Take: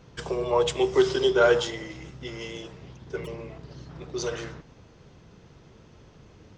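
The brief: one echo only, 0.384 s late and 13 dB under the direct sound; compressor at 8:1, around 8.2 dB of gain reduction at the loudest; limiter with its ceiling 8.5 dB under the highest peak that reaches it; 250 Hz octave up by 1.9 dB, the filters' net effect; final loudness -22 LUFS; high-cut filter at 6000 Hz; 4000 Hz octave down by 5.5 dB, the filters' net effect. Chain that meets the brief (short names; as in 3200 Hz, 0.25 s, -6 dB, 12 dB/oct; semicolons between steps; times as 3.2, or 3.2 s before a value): LPF 6000 Hz; bell 250 Hz +4 dB; bell 4000 Hz -7 dB; compressor 8:1, threshold -22 dBFS; limiter -23 dBFS; echo 0.384 s -13 dB; gain +12 dB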